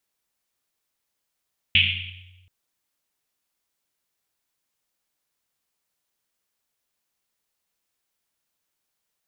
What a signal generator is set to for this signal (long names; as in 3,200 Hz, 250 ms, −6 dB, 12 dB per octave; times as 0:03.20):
drum after Risset length 0.73 s, pitch 91 Hz, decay 1.55 s, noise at 2,800 Hz, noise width 1,100 Hz, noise 75%